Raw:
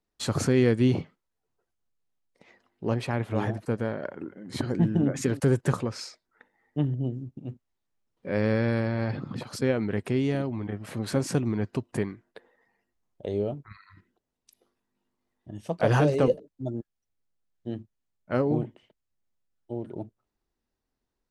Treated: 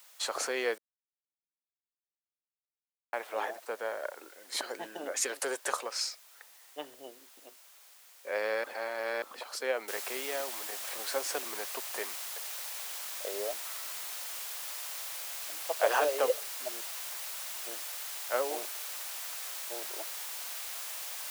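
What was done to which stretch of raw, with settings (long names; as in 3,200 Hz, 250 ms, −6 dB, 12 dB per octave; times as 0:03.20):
0:00.78–0:03.13: silence
0:04.31–0:07.18: high-shelf EQ 3,800 Hz +9 dB
0:08.64–0:09.22: reverse
0:09.88: noise floor change −57 dB −40 dB
0:12.05–0:13.44: parametric band 120 Hz +8 dB 1.1 octaves
0:16.71–0:19.76: high-pass filter 150 Hz
whole clip: high-pass filter 550 Hz 24 dB per octave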